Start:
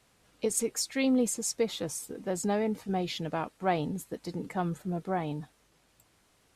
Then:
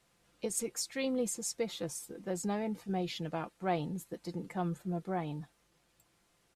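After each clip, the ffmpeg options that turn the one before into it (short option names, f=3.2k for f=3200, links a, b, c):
-af "aecho=1:1:5.8:0.39,volume=-5.5dB"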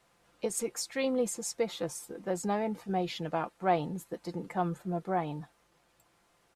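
-af "equalizer=f=900:w=0.55:g=7"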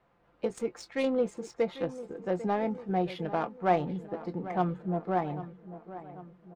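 -filter_complex "[0:a]adynamicsmooth=sensitivity=3.5:basefreq=1.9k,asplit=2[a][b];[b]adelay=22,volume=-13.5dB[c];[a][c]amix=inputs=2:normalize=0,asplit=2[d][e];[e]adelay=795,lowpass=f=2.4k:p=1,volume=-14dB,asplit=2[f][g];[g]adelay=795,lowpass=f=2.4k:p=1,volume=0.54,asplit=2[h][i];[i]adelay=795,lowpass=f=2.4k:p=1,volume=0.54,asplit=2[j][k];[k]adelay=795,lowpass=f=2.4k:p=1,volume=0.54,asplit=2[l][m];[m]adelay=795,lowpass=f=2.4k:p=1,volume=0.54[n];[d][f][h][j][l][n]amix=inputs=6:normalize=0,volume=2dB"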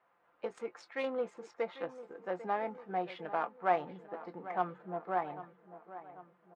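-af "bandpass=f=1.3k:t=q:w=0.86:csg=0"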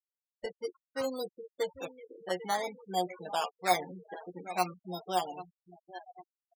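-af "acrusher=samples=14:mix=1:aa=0.000001:lfo=1:lforange=8.4:lforate=0.55,aecho=1:1:11|44:0.631|0.133,afftfilt=real='re*gte(hypot(re,im),0.0141)':imag='im*gte(hypot(re,im),0.0141)':win_size=1024:overlap=0.75"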